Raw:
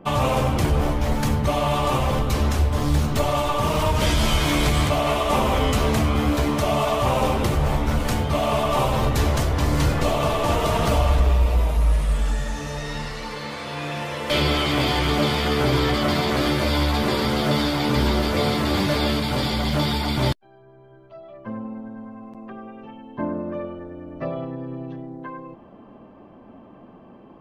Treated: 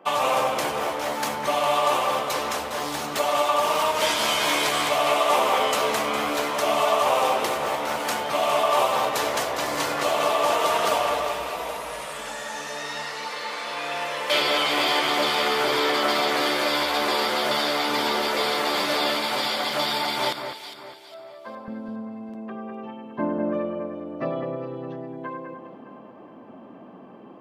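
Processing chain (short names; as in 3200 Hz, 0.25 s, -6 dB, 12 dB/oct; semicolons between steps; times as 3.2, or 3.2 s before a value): HPF 550 Hz 12 dB/oct, from 21.68 s 190 Hz; echo with dull and thin repeats by turns 0.204 s, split 2200 Hz, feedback 59%, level -6 dB; gain +1.5 dB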